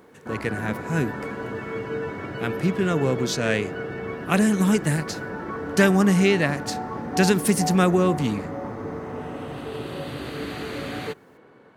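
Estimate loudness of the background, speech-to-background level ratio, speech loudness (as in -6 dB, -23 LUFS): -32.0 LUFS, 9.5 dB, -22.5 LUFS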